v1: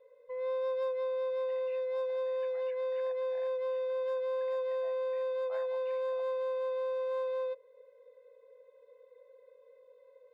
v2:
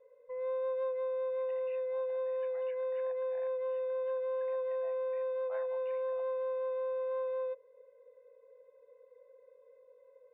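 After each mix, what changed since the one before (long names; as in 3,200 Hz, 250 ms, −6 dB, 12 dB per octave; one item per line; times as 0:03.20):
background: add high-frequency loss of the air 430 metres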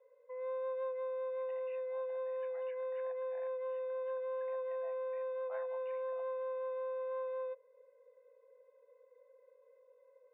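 background: add high-pass filter 560 Hz 12 dB per octave
master: add high-frequency loss of the air 180 metres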